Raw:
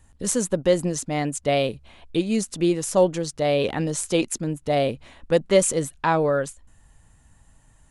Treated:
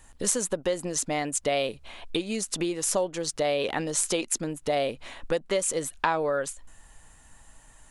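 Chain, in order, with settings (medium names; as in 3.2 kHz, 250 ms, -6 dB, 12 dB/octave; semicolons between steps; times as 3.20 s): compression 6:1, threshold -28 dBFS, peak gain reduction 15.5 dB; peaking EQ 100 Hz -12.5 dB 3 oct; trim +7 dB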